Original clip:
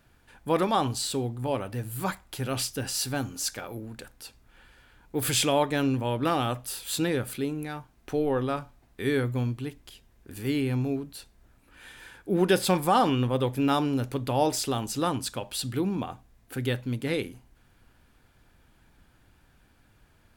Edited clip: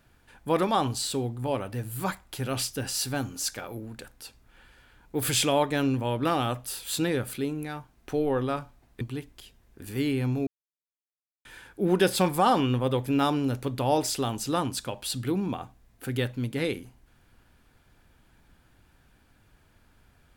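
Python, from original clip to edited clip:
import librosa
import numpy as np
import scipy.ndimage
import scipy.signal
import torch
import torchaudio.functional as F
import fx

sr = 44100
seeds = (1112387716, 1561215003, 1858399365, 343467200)

y = fx.edit(x, sr, fx.cut(start_s=9.01, length_s=0.49),
    fx.silence(start_s=10.96, length_s=0.98), tone=tone)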